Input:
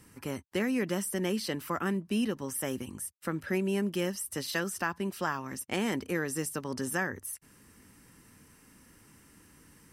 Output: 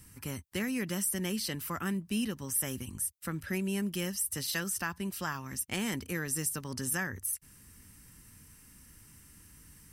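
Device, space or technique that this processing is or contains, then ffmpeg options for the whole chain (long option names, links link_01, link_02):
smiley-face EQ: -af "lowshelf=frequency=150:gain=9,equalizer=frequency=470:width_type=o:width=2.8:gain=-8.5,highshelf=frequency=7500:gain=8"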